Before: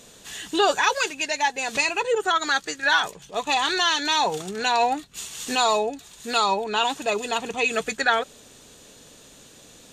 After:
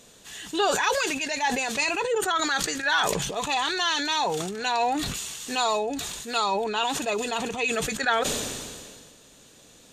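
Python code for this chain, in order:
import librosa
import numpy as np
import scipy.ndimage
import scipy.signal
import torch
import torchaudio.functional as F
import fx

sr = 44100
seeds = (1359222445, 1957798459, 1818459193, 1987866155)

y = fx.sustainer(x, sr, db_per_s=30.0)
y = F.gain(torch.from_numpy(y), -4.0).numpy()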